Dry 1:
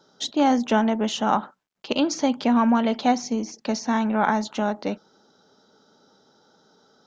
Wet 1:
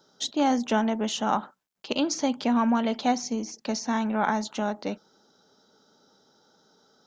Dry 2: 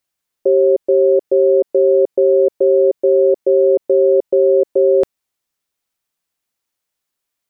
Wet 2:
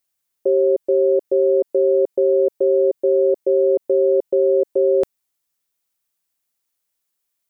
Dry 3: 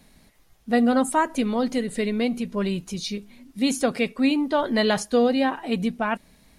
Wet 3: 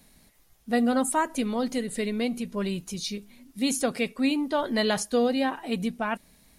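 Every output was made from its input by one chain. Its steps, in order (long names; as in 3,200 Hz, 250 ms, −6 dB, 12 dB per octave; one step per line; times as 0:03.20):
high-shelf EQ 6,700 Hz +9 dB
level −4 dB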